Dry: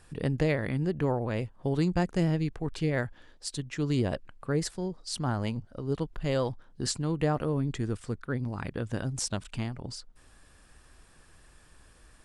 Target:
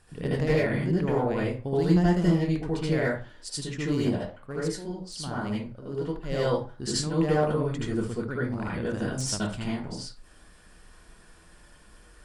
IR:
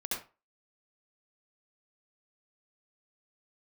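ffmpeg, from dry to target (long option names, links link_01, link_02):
-filter_complex "[0:a]asoftclip=type=hard:threshold=-20dB,asplit=3[link_01][link_02][link_03];[link_01]afade=type=out:start_time=4.01:duration=0.02[link_04];[link_02]flanger=delay=4.1:depth=6.9:regen=87:speed=1.1:shape=triangular,afade=type=in:start_time=4.01:duration=0.02,afade=type=out:start_time=6.29:duration=0.02[link_05];[link_03]afade=type=in:start_time=6.29:duration=0.02[link_06];[link_04][link_05][link_06]amix=inputs=3:normalize=0[link_07];[1:a]atrim=start_sample=2205,asetrate=38808,aresample=44100[link_08];[link_07][link_08]afir=irnorm=-1:irlink=0"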